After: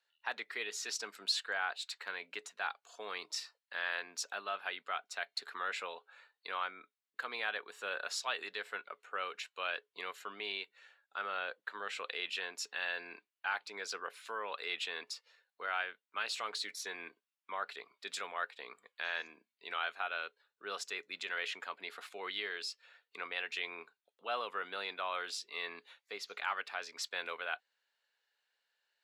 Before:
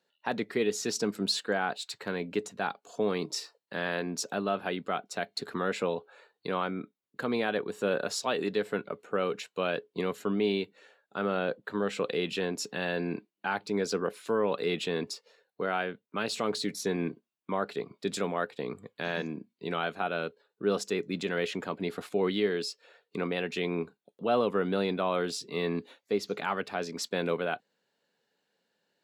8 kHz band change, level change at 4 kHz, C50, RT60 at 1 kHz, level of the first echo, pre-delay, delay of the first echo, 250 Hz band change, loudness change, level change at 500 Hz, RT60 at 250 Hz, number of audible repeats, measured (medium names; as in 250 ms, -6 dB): -5.5 dB, -3.0 dB, no reverb, no reverb, no echo, no reverb, no echo, -27.0 dB, -7.5 dB, -17.0 dB, no reverb, no echo